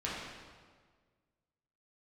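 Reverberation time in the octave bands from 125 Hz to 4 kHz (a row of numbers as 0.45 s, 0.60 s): 1.9 s, 1.7 s, 1.7 s, 1.6 s, 1.4 s, 1.2 s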